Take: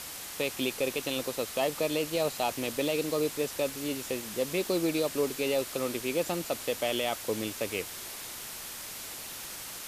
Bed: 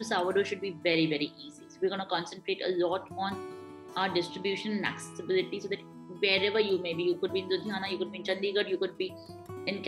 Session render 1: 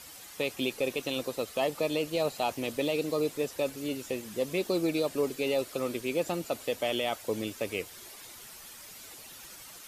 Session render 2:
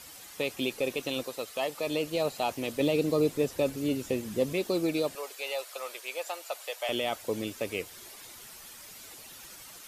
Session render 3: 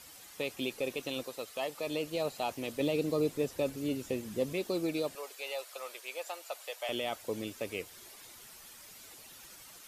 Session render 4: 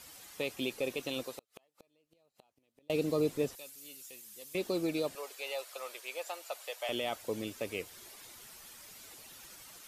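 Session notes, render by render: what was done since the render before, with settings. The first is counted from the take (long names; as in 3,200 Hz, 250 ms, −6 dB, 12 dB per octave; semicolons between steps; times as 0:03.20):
broadband denoise 10 dB, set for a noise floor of −42 dBFS
0:01.23–0:01.87: low-shelf EQ 400 Hz −9 dB; 0:02.80–0:04.53: low-shelf EQ 360 Hz +8.5 dB; 0:05.15–0:06.89: high-pass filter 610 Hz 24 dB per octave
level −4.5 dB
0:01.29–0:02.90: gate with flip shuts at −30 dBFS, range −39 dB; 0:03.55–0:04.55: first-order pre-emphasis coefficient 0.97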